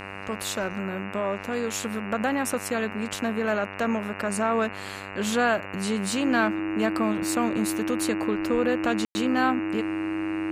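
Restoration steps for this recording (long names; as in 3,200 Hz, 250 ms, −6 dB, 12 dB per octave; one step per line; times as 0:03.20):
click removal
hum removal 97.8 Hz, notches 29
notch filter 320 Hz, Q 30
ambience match 0:09.05–0:09.15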